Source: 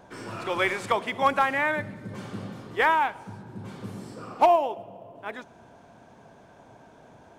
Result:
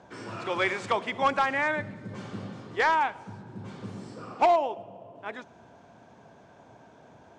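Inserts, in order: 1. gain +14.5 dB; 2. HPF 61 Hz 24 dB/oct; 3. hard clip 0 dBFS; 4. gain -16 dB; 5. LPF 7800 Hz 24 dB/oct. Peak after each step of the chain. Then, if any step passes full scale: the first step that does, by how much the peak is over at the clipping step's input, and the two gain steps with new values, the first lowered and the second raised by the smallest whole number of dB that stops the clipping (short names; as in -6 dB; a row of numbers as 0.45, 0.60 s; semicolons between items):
+3.5, +4.5, 0.0, -16.0, -15.5 dBFS; step 1, 4.5 dB; step 1 +9.5 dB, step 4 -11 dB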